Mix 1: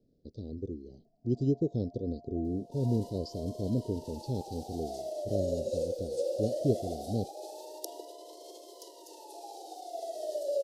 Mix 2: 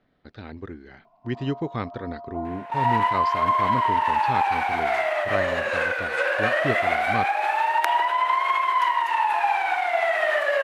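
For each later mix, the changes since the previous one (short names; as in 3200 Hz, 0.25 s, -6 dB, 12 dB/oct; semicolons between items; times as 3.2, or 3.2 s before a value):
master: remove elliptic band-stop 490–5000 Hz, stop band 50 dB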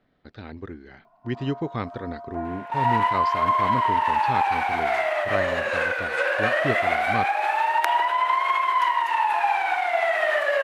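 first sound: remove polynomial smoothing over 65 samples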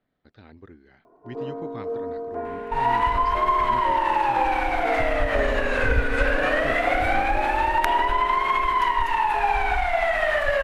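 speech -9.5 dB; first sound: remove brick-wall FIR high-pass 600 Hz; second sound: remove steep high-pass 310 Hz 96 dB/oct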